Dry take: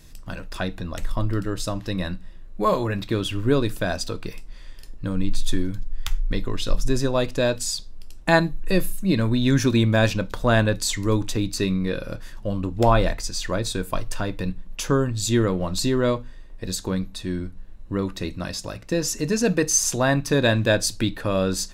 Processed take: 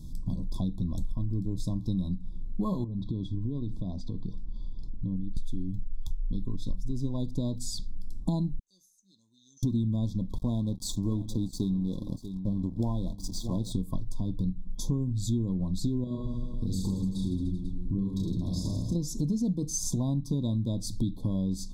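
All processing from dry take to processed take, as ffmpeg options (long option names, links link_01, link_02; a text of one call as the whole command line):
ffmpeg -i in.wav -filter_complex "[0:a]asettb=1/sr,asplit=3[link_01][link_02][link_03];[link_01]atrim=end=2.844[link_04];[link_02]atrim=start=2.84:end=5.37,asetpts=PTS-STARTPTS,afade=type=in:duration=0.004:curve=qsin,afade=type=out:start_time=2.526:duration=0.004:curve=qsin,acompressor=threshold=-35dB:ratio=4:attack=3.2:release=140:knee=1:detection=peak,lowpass=3700[link_05];[link_03]atrim=start=5.366[link_06];[link_04][link_05]acrossfade=duration=0.004:curve1=hsin:curve2=qsin[link_07];[link_07][link_06]acrossfade=duration=0.004:curve1=qsin:curve2=hsin,asettb=1/sr,asplit=3[link_08][link_09][link_10];[link_08]atrim=end=8.594[link_11];[link_09]atrim=start=8.59:end=9.63,asetpts=PTS-STARTPTS,afade=type=in:duration=0.004:curve=qsin,afade=type=out:start_time=1.036:duration=0.004:curve=qsin,bandpass=frequency=6200:width_type=q:width=16,acompressor=threshold=-48dB:ratio=12:attack=3.2:release=140:knee=1:detection=peak[link_12];[link_10]atrim=start=9.626[link_13];[link_11][link_12]acrossfade=duration=0.004:curve1=hsin:curve2=qsin[link_14];[link_14][link_13]acrossfade=duration=0.004:curve1=qsin:curve2=hsin,asettb=1/sr,asplit=3[link_15][link_16][link_17];[link_15]atrim=end=10.384[link_18];[link_16]atrim=start=10.38:end=13.72,asetpts=PTS-STARTPTS,afade=type=in:duration=0.004:curve=qsin,afade=type=out:start_time=3.336:duration=0.004:curve=qsin,lowshelf=frequency=130:gain=-5.5,aeval=exprs='sgn(val(0))*max(abs(val(0))-0.0141,0)':channel_layout=same,aecho=1:1:638:0.112,atrim=end_sample=147294[link_19];[link_17]atrim=start=13.716[link_20];[link_18][link_19]acrossfade=duration=0.004:curve1=hsin:curve2=qsin[link_21];[link_21][link_20]acrossfade=duration=0.004:curve1=qsin:curve2=hsin,asettb=1/sr,asplit=3[link_22][link_23][link_24];[link_22]atrim=end=16.044[link_25];[link_23]atrim=start=16.04:end=18.96,asetpts=PTS-STARTPTS,afade=type=in:duration=0.004:curve=qsin,afade=type=out:start_time=2.916:duration=0.004:curve=qsin,acompressor=threshold=-31dB:ratio=2.5:attack=3.2:release=140:knee=1:detection=peak,aecho=1:1:30|66|109.2|161|223.2|297.9|387.5|495:0.794|0.631|0.501|0.398|0.316|0.251|0.2|0.158,atrim=end_sample=128772[link_26];[link_24]atrim=start=18.956[link_27];[link_25][link_26]acrossfade=duration=0.004:curve1=hsin:curve2=qsin[link_28];[link_28][link_27]acrossfade=duration=0.004:curve1=qsin:curve2=hsin,lowshelf=frequency=340:width_type=q:width=1.5:gain=13.5,acompressor=threshold=-20dB:ratio=6,afftfilt=real='re*(1-between(b*sr/4096,1100,3300))':imag='im*(1-between(b*sr/4096,1100,3300))':win_size=4096:overlap=0.75,volume=-6.5dB" out.wav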